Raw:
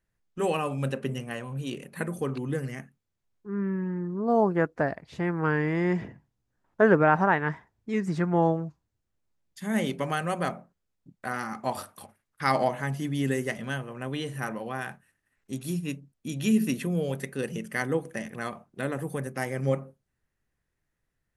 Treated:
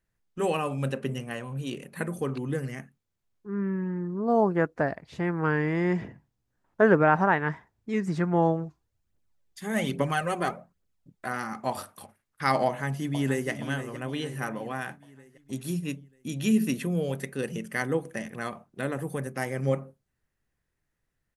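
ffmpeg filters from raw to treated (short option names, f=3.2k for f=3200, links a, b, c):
-filter_complex "[0:a]asplit=3[a][b][c];[a]afade=t=out:st=8.63:d=0.02[d];[b]aphaser=in_gain=1:out_gain=1:delay=3:decay=0.5:speed=1.2:type=triangular,afade=t=in:st=8.63:d=0.02,afade=t=out:st=11.26:d=0.02[e];[c]afade=t=in:st=11.26:d=0.02[f];[d][e][f]amix=inputs=3:normalize=0,asplit=2[g][h];[h]afade=t=in:st=12.67:d=0.01,afade=t=out:st=13.49:d=0.01,aecho=0:1:470|940|1410|1880|2350|2820:0.298538|0.164196|0.0903078|0.0496693|0.0273181|0.015025[i];[g][i]amix=inputs=2:normalize=0"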